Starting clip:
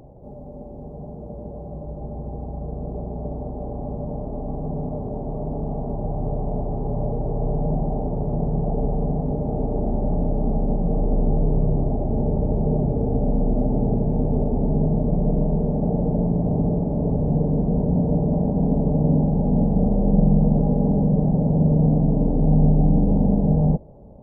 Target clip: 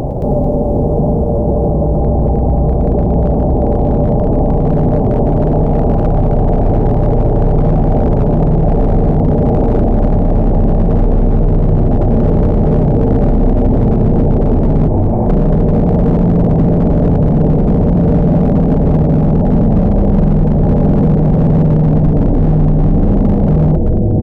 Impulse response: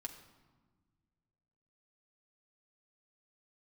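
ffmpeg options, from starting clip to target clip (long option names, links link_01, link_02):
-filter_complex "[0:a]asplit=3[link_01][link_02][link_03];[link_01]afade=type=out:start_time=14.87:duration=0.02[link_04];[link_02]highpass=frequency=750:width=0.5412,highpass=frequency=750:width=1.3066,afade=type=in:start_time=14.87:duration=0.02,afade=type=out:start_time=15.28:duration=0.02[link_05];[link_03]afade=type=in:start_time=15.28:duration=0.02[link_06];[link_04][link_05][link_06]amix=inputs=3:normalize=0,asplit=7[link_07][link_08][link_09][link_10][link_11][link_12][link_13];[link_08]adelay=222,afreqshift=-130,volume=-7dB[link_14];[link_09]adelay=444,afreqshift=-260,volume=-13.2dB[link_15];[link_10]adelay=666,afreqshift=-390,volume=-19.4dB[link_16];[link_11]adelay=888,afreqshift=-520,volume=-25.6dB[link_17];[link_12]adelay=1110,afreqshift=-650,volume=-31.8dB[link_18];[link_13]adelay=1332,afreqshift=-780,volume=-38dB[link_19];[link_07][link_14][link_15][link_16][link_17][link_18][link_19]amix=inputs=7:normalize=0,asplit=2[link_20][link_21];[1:a]atrim=start_sample=2205,adelay=109[link_22];[link_21][link_22]afir=irnorm=-1:irlink=0,volume=-14.5dB[link_23];[link_20][link_23]amix=inputs=2:normalize=0,acompressor=threshold=-23dB:ratio=4,asoftclip=type=hard:threshold=-21.5dB,alimiter=level_in=32dB:limit=-1dB:release=50:level=0:latency=1,volume=-4.5dB"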